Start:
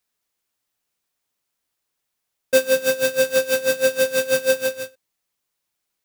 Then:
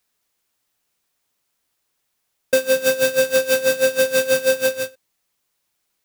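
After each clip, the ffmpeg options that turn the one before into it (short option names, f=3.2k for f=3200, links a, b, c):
-af "acompressor=threshold=-19dB:ratio=10,volume=5.5dB"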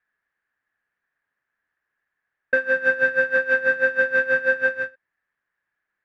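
-af "lowpass=f=1.7k:t=q:w=9.7,volume=-8dB"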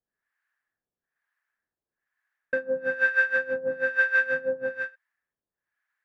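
-filter_complex "[0:a]acrossover=split=710[a][b];[a]aeval=exprs='val(0)*(1-1/2+1/2*cos(2*PI*1.1*n/s))':c=same[c];[b]aeval=exprs='val(0)*(1-1/2-1/2*cos(2*PI*1.1*n/s))':c=same[d];[c][d]amix=inputs=2:normalize=0"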